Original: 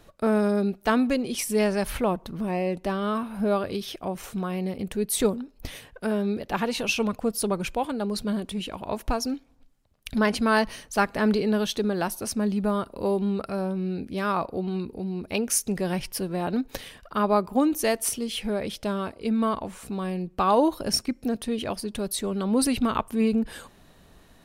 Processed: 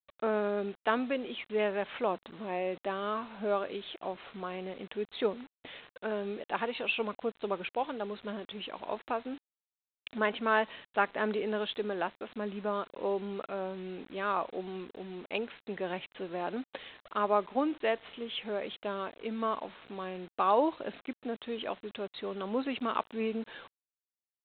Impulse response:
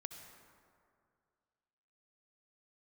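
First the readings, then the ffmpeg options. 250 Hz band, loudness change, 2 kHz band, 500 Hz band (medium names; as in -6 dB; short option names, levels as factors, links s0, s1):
-12.5 dB, -8.0 dB, -4.5 dB, -6.0 dB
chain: -af "highpass=360,aresample=8000,acrusher=bits=7:mix=0:aa=0.000001,aresample=44100,volume=0.596"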